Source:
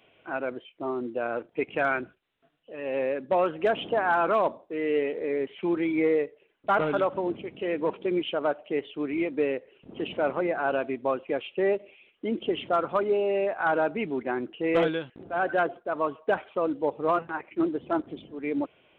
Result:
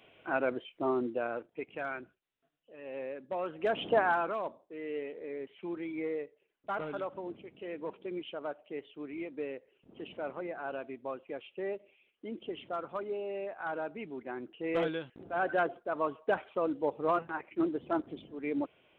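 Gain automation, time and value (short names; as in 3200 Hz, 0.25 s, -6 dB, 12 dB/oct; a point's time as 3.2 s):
0.97 s +0.5 dB
1.65 s -12 dB
3.4 s -12 dB
3.97 s 0 dB
4.35 s -12 dB
14.16 s -12 dB
15.24 s -4.5 dB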